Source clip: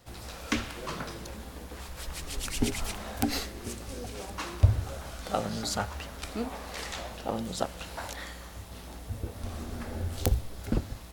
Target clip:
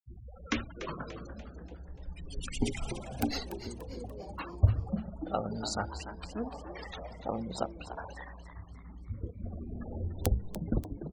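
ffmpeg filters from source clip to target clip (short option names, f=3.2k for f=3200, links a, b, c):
-filter_complex "[0:a]afftfilt=real='re*gte(hypot(re,im),0.0251)':imag='im*gte(hypot(re,im),0.0251)':win_size=1024:overlap=0.75,asplit=6[a][b][c][d][e][f];[b]adelay=291,afreqshift=110,volume=-11.5dB[g];[c]adelay=582,afreqshift=220,volume=-18.1dB[h];[d]adelay=873,afreqshift=330,volume=-24.6dB[i];[e]adelay=1164,afreqshift=440,volume=-31.2dB[j];[f]adelay=1455,afreqshift=550,volume=-37.7dB[k];[a][g][h][i][j][k]amix=inputs=6:normalize=0,volume=-2.5dB"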